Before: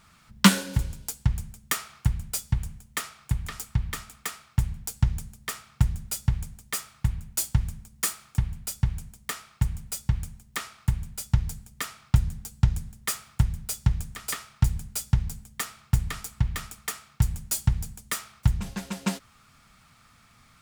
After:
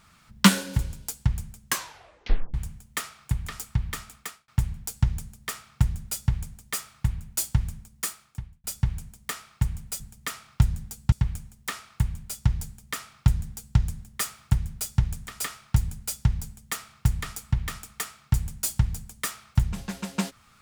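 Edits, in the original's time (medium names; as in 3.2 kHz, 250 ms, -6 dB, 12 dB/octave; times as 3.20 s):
1.64 s: tape stop 0.90 s
4.14–4.48 s: fade out
7.77–8.64 s: fade out
11.54–12.66 s: copy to 10.00 s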